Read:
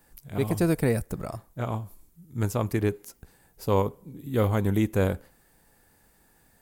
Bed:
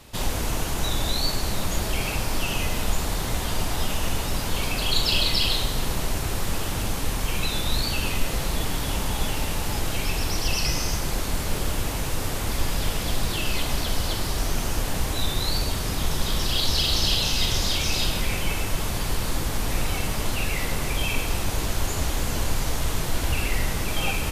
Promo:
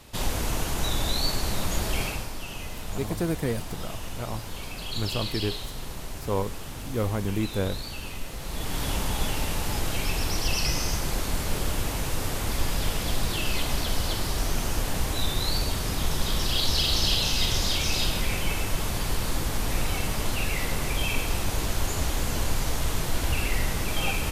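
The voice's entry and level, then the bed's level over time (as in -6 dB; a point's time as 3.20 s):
2.60 s, -4.0 dB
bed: 2.02 s -1.5 dB
2.34 s -10.5 dB
8.37 s -10.5 dB
8.82 s -1.5 dB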